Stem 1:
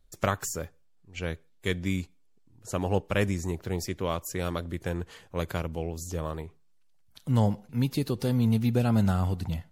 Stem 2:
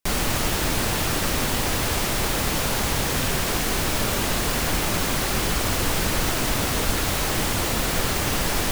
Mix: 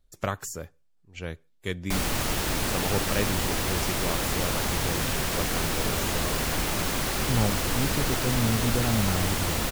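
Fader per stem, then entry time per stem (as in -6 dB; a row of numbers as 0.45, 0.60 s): -2.5, -4.0 dB; 0.00, 1.85 s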